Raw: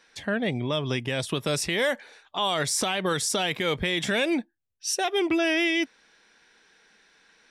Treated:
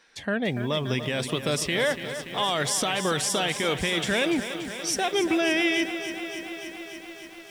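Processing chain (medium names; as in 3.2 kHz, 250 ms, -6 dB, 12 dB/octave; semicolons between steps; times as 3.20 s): bit-crushed delay 288 ms, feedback 80%, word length 8-bit, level -10.5 dB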